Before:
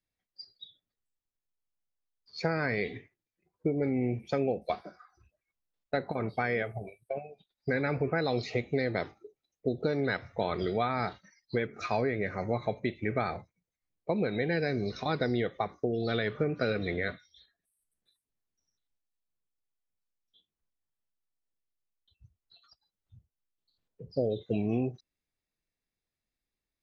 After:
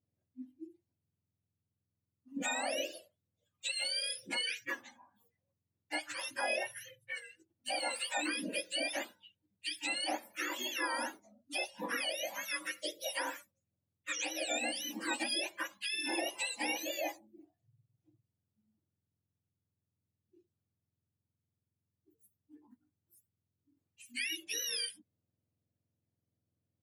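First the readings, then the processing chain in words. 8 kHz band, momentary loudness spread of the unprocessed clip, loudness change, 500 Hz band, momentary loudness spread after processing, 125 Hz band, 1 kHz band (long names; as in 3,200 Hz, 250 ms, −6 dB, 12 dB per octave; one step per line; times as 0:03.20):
can't be measured, 11 LU, −4.5 dB, −12.0 dB, 10 LU, below −30 dB, −5.5 dB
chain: frequency axis turned over on the octave scale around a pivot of 1,100 Hz
level −2 dB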